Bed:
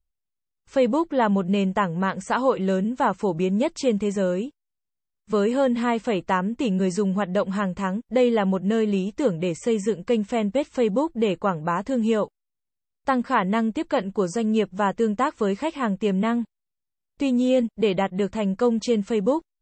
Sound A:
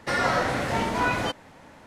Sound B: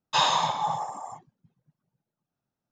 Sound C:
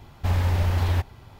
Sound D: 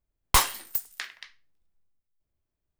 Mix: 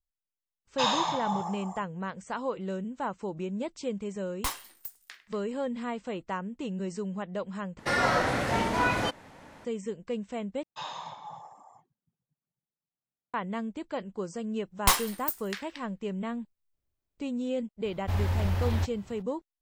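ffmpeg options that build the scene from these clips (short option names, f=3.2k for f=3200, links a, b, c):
-filter_complex "[2:a]asplit=2[a][b];[4:a]asplit=2[c][d];[0:a]volume=-11.5dB[e];[b]highshelf=f=6k:g=-8[f];[e]asplit=3[g][h][i];[g]atrim=end=7.794[j];[1:a]atrim=end=1.86,asetpts=PTS-STARTPTS,volume=-1.5dB[k];[h]atrim=start=9.646:end=10.634[l];[f]atrim=end=2.71,asetpts=PTS-STARTPTS,volume=-15.5dB[m];[i]atrim=start=13.336[n];[a]atrim=end=2.71,asetpts=PTS-STARTPTS,volume=-4.5dB,afade=t=in:d=0.004:c=hsin,afade=t=out:st=2.706:d=0.004:c=hsin,adelay=650[o];[c]atrim=end=2.79,asetpts=PTS-STARTPTS,volume=-12dB,afade=t=in:d=0.004:c=hsin,afade=t=out:st=2.786:d=0.004:c=hsin,adelay=4100[p];[d]atrim=end=2.79,asetpts=PTS-STARTPTS,volume=-2.5dB,afade=t=in:d=0.004:c=hsin,afade=t=out:st=2.786:d=0.004:c=hsin,adelay=14530[q];[3:a]atrim=end=1.39,asetpts=PTS-STARTPTS,volume=-5.5dB,afade=t=in:d=0.02,afade=t=out:st=1.37:d=0.02,adelay=17840[r];[j][k]acrossfade=d=0.004:c1=hsin:c2=hsin[s];[s][l]acrossfade=d=0.004:c1=hsin:c2=hsin[t];[t][m]acrossfade=d=0.004:c1=hsin:c2=hsin[u];[u][n]acrossfade=d=0.004:c1=hsin:c2=hsin[v];[v][o][p][q][r]amix=inputs=5:normalize=0"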